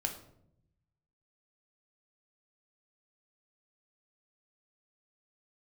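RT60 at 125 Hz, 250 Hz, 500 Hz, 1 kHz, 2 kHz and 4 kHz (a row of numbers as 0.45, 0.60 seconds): 1.5, 1.1, 0.85, 0.60, 0.50, 0.45 seconds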